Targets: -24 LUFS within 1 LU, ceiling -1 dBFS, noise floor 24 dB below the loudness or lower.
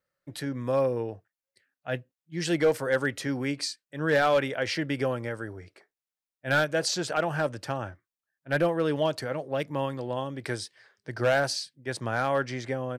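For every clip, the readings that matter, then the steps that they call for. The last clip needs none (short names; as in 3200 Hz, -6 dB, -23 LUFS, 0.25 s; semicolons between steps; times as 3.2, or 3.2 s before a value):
clipped 0.5%; flat tops at -16.5 dBFS; loudness -28.5 LUFS; peak -16.5 dBFS; loudness target -24.0 LUFS
-> clip repair -16.5 dBFS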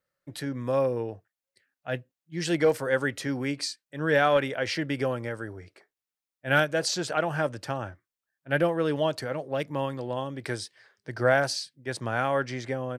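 clipped 0.0%; loudness -28.0 LUFS; peak -7.5 dBFS; loudness target -24.0 LUFS
-> gain +4 dB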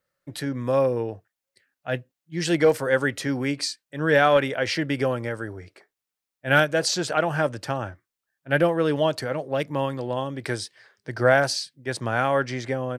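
loudness -24.0 LUFS; peak -3.5 dBFS; noise floor -87 dBFS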